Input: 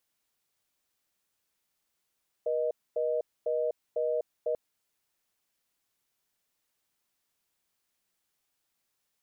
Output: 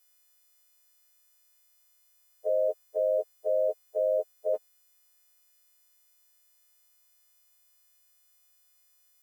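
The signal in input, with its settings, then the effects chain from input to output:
call progress tone reorder tone, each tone -29 dBFS 2.09 s
partials quantised in pitch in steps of 3 st; high-pass 200 Hz 24 dB/octave; dynamic bell 610 Hz, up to +4 dB, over -39 dBFS, Q 1

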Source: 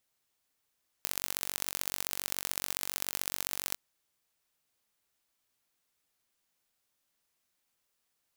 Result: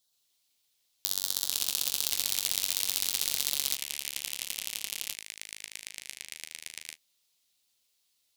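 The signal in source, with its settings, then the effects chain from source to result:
pulse train 47.1 per s, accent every 3, -4 dBFS 2.70 s
resonant high shelf 3 kHz +8 dB, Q 3; flange 0.55 Hz, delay 6.4 ms, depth 5 ms, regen -35%; ever faster or slower copies 127 ms, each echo -5 st, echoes 2, each echo -6 dB

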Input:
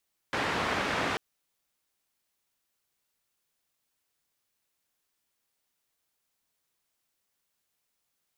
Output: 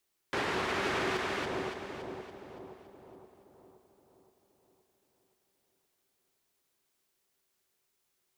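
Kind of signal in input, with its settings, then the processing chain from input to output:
noise band 83–1900 Hz, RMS -30 dBFS 0.84 s
on a send: two-band feedback delay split 880 Hz, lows 521 ms, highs 283 ms, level -6 dB; on the sum: peak limiter -24 dBFS; peaking EQ 380 Hz +12 dB 0.2 oct

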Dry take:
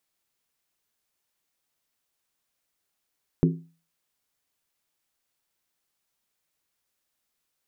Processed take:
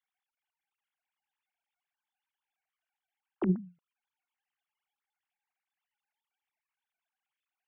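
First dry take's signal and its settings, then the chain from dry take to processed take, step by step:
skin hit, lowest mode 165 Hz, decay 0.37 s, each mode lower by 4 dB, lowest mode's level -14.5 dB
formants replaced by sine waves; compressor with a negative ratio -24 dBFS, ratio -0.5

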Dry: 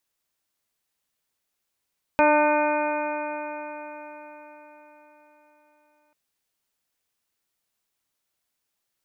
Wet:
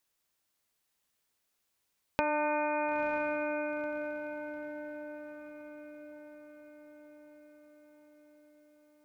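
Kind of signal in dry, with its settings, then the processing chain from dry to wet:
stretched partials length 3.94 s, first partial 298 Hz, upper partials 5/4.5/-6/-2.5/-13/-11.5/-2.5 dB, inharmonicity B 0.00097, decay 4.72 s, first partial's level -23 dB
compression 6:1, threshold -28 dBFS; on a send: echo that smears into a reverb 949 ms, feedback 52%, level -9.5 dB

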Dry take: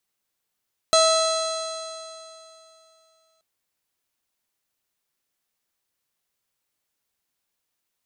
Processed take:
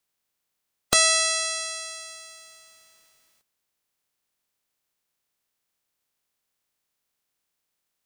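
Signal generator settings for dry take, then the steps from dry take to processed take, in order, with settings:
stretched partials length 2.48 s, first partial 644 Hz, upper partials -4/-19.5/-16.5/-13/-3.5/-16/-18/-8/-17/-13.5/-18 dB, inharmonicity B 0.003, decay 2.85 s, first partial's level -16 dB
spectral peaks clipped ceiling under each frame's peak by 27 dB; two-slope reverb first 0.24 s, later 1.7 s, from -20 dB, DRR 16.5 dB

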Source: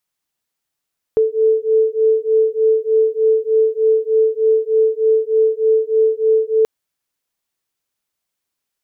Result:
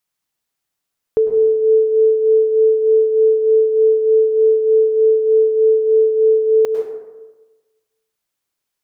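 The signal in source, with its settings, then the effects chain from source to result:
beating tones 439 Hz, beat 3.3 Hz, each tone -15 dBFS 5.48 s
plate-style reverb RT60 1.2 s, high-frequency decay 0.45×, pre-delay 90 ms, DRR 5.5 dB

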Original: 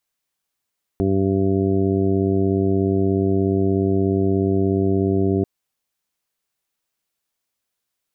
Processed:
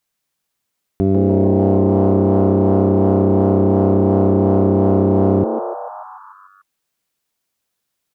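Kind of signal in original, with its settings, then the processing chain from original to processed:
steady additive tone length 4.44 s, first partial 96.8 Hz, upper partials -0.5/0/1.5/-12.5/-19.5/-10 dB, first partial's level -22 dB
peaking EQ 160 Hz +4 dB 1.3 oct; frequency-shifting echo 147 ms, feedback 63%, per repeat +130 Hz, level -8 dB; in parallel at -8 dB: one-sided clip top -17 dBFS, bottom -10 dBFS

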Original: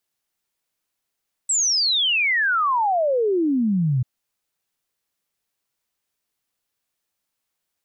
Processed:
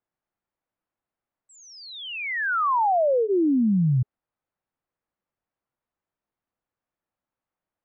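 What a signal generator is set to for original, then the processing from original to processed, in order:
log sweep 8 kHz -> 120 Hz 2.54 s -17 dBFS
low-pass 1.3 kHz 12 dB/octave; band-stop 420 Hz, Q 12

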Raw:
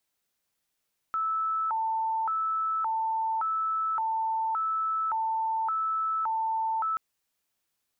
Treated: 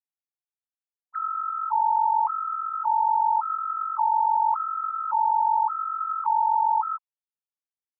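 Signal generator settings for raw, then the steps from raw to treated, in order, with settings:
siren hi-lo 891–1310 Hz 0.88 per s sine -25.5 dBFS 5.83 s
formants replaced by sine waves; level-controlled noise filter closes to 820 Hz, open at -26.5 dBFS; dynamic bell 1 kHz, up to +7 dB, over -41 dBFS, Q 2.6

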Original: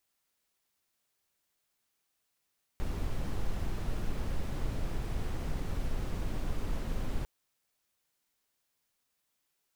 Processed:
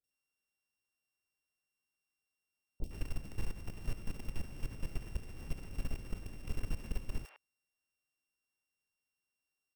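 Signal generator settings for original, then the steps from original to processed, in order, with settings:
noise brown, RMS -31.5 dBFS 4.45 s
sorted samples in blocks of 16 samples; three bands offset in time lows, highs, mids 40/110 ms, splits 690/3200 Hz; level held to a coarse grid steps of 15 dB

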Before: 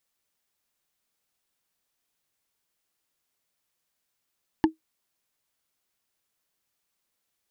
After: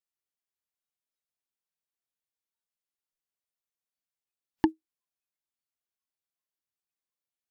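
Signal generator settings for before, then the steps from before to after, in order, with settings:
wood hit, lowest mode 318 Hz, decay 0.13 s, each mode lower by 5 dB, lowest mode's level -11.5 dB
spectral noise reduction 17 dB

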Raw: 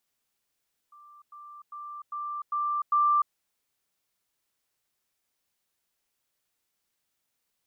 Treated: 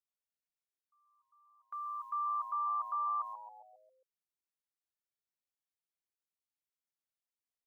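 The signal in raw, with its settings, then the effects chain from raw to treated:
level ladder 1.18 kHz -49.5 dBFS, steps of 6 dB, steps 6, 0.30 s 0.10 s
gate with hold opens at -40 dBFS; peak limiter -31 dBFS; on a send: frequency-shifting echo 135 ms, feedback 53%, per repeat -110 Hz, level -11 dB

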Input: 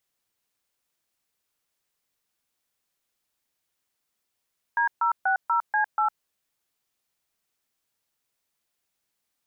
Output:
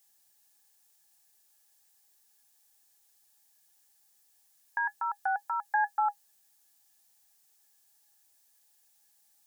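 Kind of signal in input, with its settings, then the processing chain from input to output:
DTMF "D060C8", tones 106 ms, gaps 136 ms, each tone -22.5 dBFS
tone controls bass -1 dB, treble +14 dB; peak limiter -25.5 dBFS; small resonant body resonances 820/1700 Hz, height 16 dB, ringing for 85 ms

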